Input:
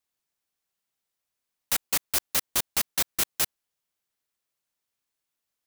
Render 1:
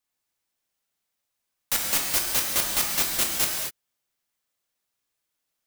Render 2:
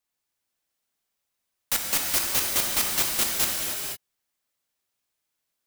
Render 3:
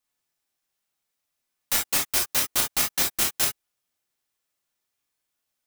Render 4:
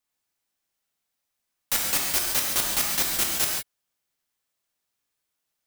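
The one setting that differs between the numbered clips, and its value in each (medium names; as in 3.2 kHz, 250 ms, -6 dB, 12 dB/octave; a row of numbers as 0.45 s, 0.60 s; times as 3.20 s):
gated-style reverb, gate: 270 ms, 530 ms, 80 ms, 190 ms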